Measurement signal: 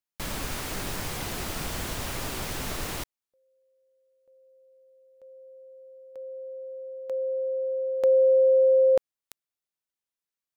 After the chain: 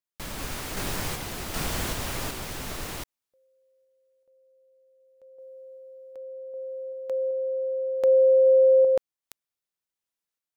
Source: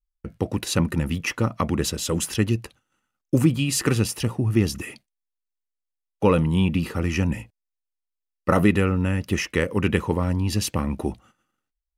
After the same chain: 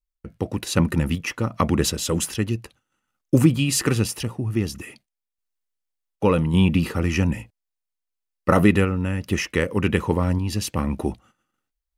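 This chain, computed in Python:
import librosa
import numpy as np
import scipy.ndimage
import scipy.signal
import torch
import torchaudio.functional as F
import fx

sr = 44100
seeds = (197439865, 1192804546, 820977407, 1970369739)

y = fx.tremolo_random(x, sr, seeds[0], hz=2.6, depth_pct=55)
y = F.gain(torch.from_numpy(y), 3.5).numpy()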